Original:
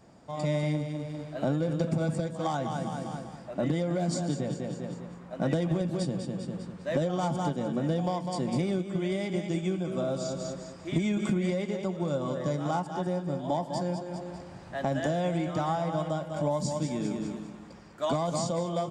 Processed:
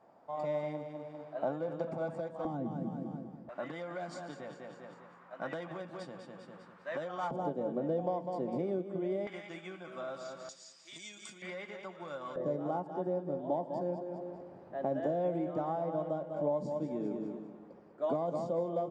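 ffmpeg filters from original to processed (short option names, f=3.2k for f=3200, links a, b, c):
-af "asetnsamples=n=441:p=0,asendcmd='2.45 bandpass f 270;3.49 bandpass f 1300;7.31 bandpass f 500;9.27 bandpass f 1500;10.49 bandpass f 5500;11.42 bandpass f 1600;12.36 bandpass f 450',bandpass=f=800:t=q:w=1.4:csg=0"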